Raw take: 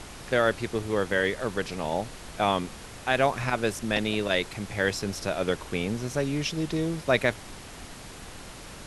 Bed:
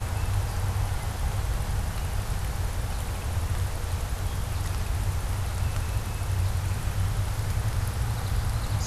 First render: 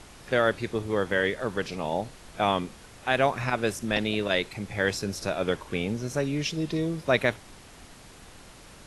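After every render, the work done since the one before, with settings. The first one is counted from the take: noise print and reduce 6 dB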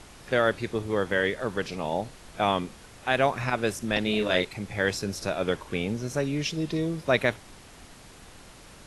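4.03–4.45 s: doubling 33 ms -4.5 dB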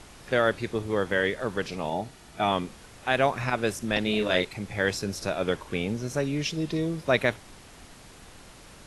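1.90–2.52 s: comb of notches 530 Hz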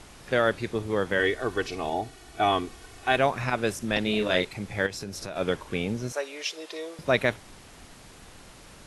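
1.19–3.17 s: comb 2.7 ms; 4.86–5.36 s: compression 4:1, threshold -32 dBFS; 6.12–6.99 s: high-pass 480 Hz 24 dB/octave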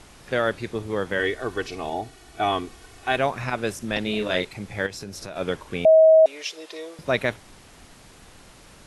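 5.85–6.26 s: bleep 638 Hz -9.5 dBFS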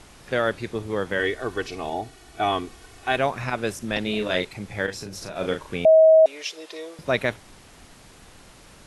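4.84–5.76 s: doubling 37 ms -6 dB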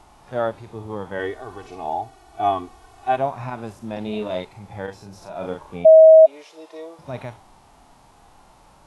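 FFT filter 500 Hz 0 dB, 860 Hz +11 dB, 1.7 kHz -4 dB; harmonic-percussive split percussive -17 dB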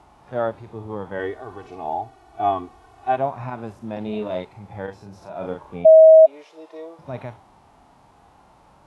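high-pass 50 Hz; treble shelf 3.4 kHz -10 dB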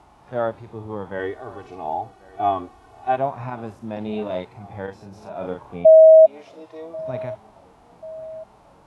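filtered feedback delay 1088 ms, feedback 60%, low-pass 3.3 kHz, level -22 dB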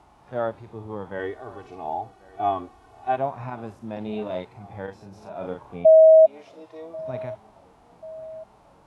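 trim -3 dB

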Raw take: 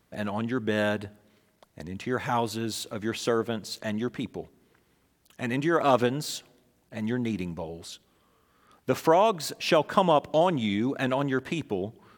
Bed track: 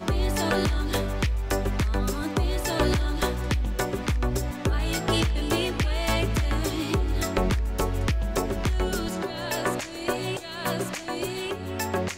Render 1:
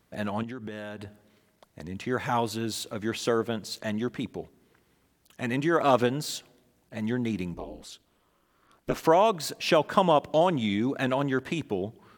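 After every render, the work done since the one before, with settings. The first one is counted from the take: 0.43–1.85 s: compression, threshold -34 dBFS; 7.54–9.03 s: ring modulator 110 Hz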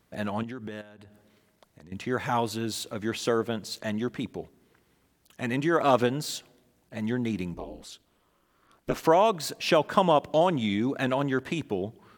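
0.81–1.92 s: compression 3:1, threshold -50 dBFS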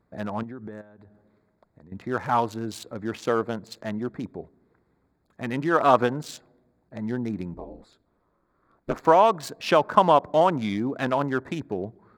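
local Wiener filter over 15 samples; dynamic bell 1.1 kHz, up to +7 dB, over -36 dBFS, Q 0.96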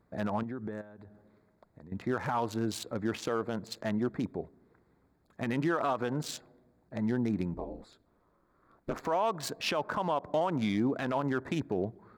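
compression 3:1, threshold -23 dBFS, peak gain reduction 9 dB; peak limiter -20.5 dBFS, peak gain reduction 11.5 dB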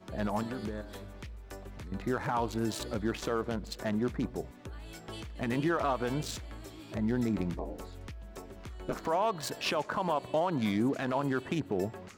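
add bed track -19.5 dB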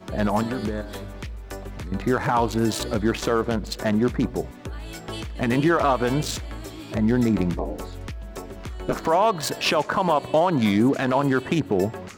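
trim +10 dB

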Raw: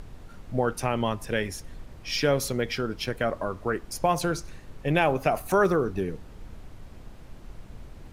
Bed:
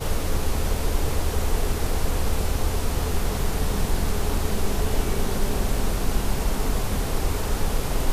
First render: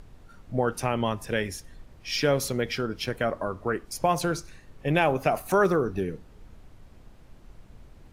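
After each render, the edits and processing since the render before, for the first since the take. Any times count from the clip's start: noise print and reduce 6 dB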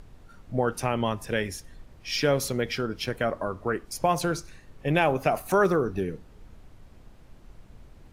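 no audible change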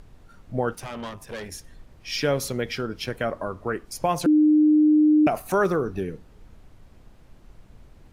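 0.75–1.52 s: valve stage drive 29 dB, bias 0.75; 4.26–5.27 s: bleep 304 Hz -13.5 dBFS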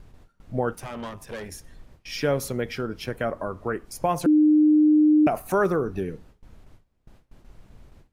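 gate with hold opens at -39 dBFS; dynamic bell 4.2 kHz, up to -6 dB, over -45 dBFS, Q 0.77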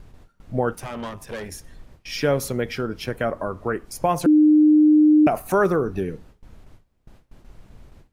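trim +3 dB

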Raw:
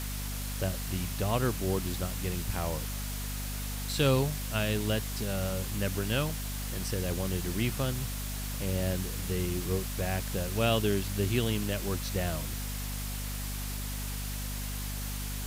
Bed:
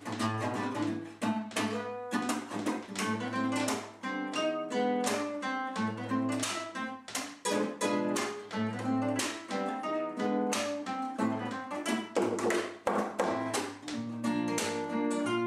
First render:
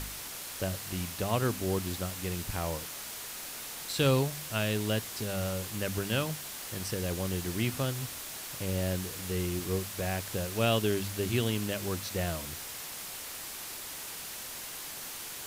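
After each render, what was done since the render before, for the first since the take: de-hum 50 Hz, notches 5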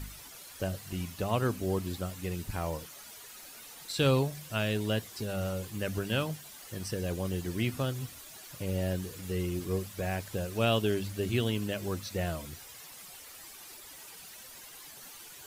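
noise reduction 11 dB, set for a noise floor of -42 dBFS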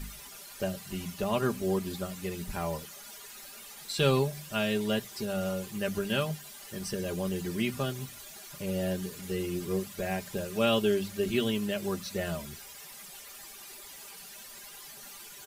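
hum notches 60/120/180 Hz; comb 5 ms, depth 67%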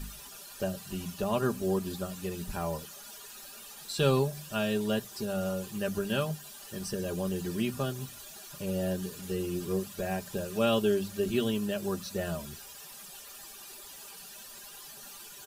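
band-stop 2.1 kHz, Q 5.2; dynamic bell 3 kHz, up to -3 dB, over -46 dBFS, Q 1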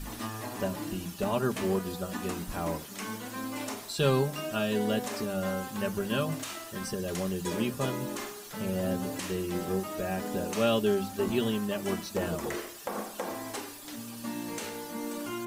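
add bed -5.5 dB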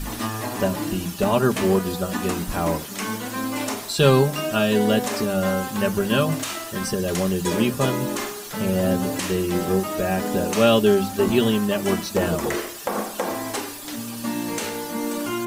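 trim +9.5 dB

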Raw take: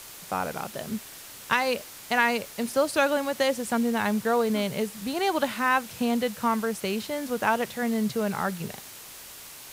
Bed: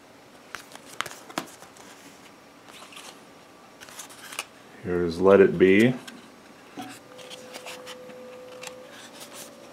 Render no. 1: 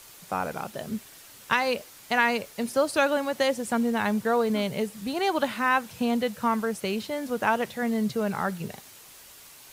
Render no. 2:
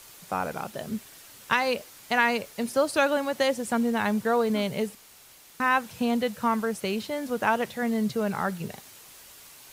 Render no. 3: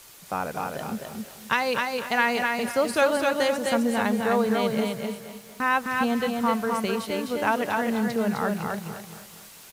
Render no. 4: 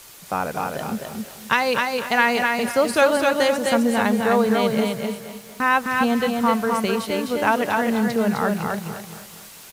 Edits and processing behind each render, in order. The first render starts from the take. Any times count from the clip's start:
noise reduction 6 dB, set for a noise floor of -44 dBFS
4.95–5.60 s: room tone
feedback delay 258 ms, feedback 24%, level -3.5 dB; bit-crushed delay 234 ms, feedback 55%, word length 8-bit, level -13.5 dB
trim +4.5 dB

